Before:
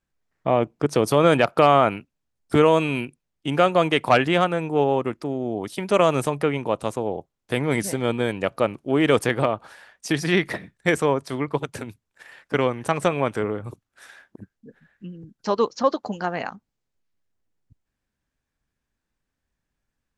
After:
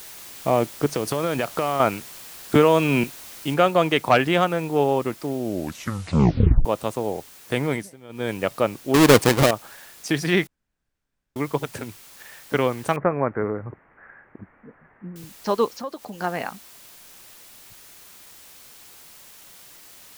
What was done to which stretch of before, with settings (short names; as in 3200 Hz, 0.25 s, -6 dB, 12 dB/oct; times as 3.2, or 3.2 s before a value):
0.87–1.8 compressor 4:1, threshold -20 dBFS
2.55–3.04 three-band squash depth 100%
3.54 noise floor step -41 dB -47 dB
5.39 tape stop 1.26 s
7.66–8.33 dip -20.5 dB, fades 0.24 s
8.94–9.51 half-waves squared off
10.47–11.36 room tone
12.96–15.16 steep low-pass 2000 Hz 48 dB/oct
15.74–16.2 compressor 2:1, threshold -37 dBFS